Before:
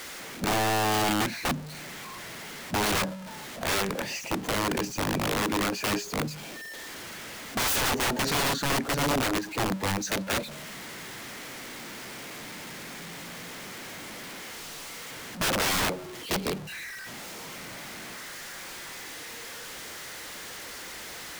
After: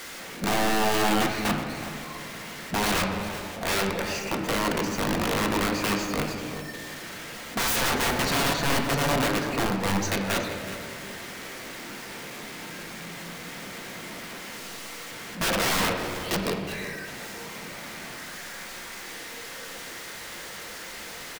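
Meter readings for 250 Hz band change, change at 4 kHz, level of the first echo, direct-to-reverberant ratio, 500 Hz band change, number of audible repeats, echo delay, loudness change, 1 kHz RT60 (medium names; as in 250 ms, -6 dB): +3.0 dB, +1.0 dB, -13.0 dB, 1.5 dB, +3.0 dB, 1, 376 ms, +2.0 dB, 1.9 s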